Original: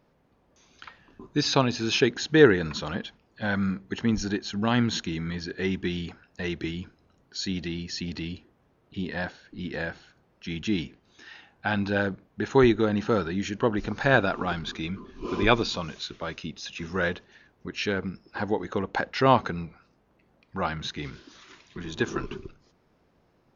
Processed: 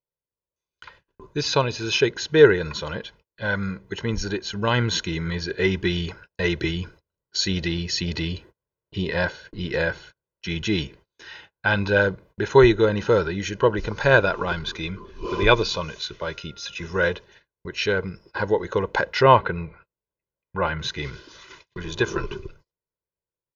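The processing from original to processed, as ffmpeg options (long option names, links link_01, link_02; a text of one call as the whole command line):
ffmpeg -i in.wav -filter_complex "[0:a]asettb=1/sr,asplit=3[link_01][link_02][link_03];[link_01]atrim=end=16.224[link_04];[link_02]atrim=start=16.22:end=16.74,asetpts=PTS-STARTPTS,afade=type=in:duration=0.004:curve=qsin,afade=type=out:start_time=0.516:duration=0.004:curve=qsin,aeval=exprs='val(0)+0.00178*sin(2*PI*1400*n/s)':channel_layout=same[link_05];[link_03]atrim=start=16.736[link_06];[link_04][link_05]acrossfade=duration=0.004:curve1=hsin:curve2=qsin[link_07];[link_07][link_06]acrossfade=duration=0.004:curve1=qsin:curve2=hsin,asettb=1/sr,asplit=3[link_08][link_09][link_10];[link_08]atrim=end=19.234[link_11];[link_09]atrim=start=19.23:end=20.79,asetpts=PTS-STARTPTS,afade=type=in:duration=0.004:curve=qsin,afade=type=out:start_time=1.556:duration=0.004:curve=qsin,lowpass=frequency=3200:width=0.5412,lowpass=frequency=3200:width=1.3066[link_12];[link_10]atrim=start=20.786[link_13];[link_11][link_12]acrossfade=duration=0.004:curve1=hsin:curve2=qsin[link_14];[link_14][link_13]acrossfade=duration=0.004:curve1=qsin:curve2=hsin,agate=range=-33dB:threshold=-52dB:ratio=16:detection=peak,aecho=1:1:2:0.68,dynaudnorm=framelen=480:gausssize=9:maxgain=7.5dB" out.wav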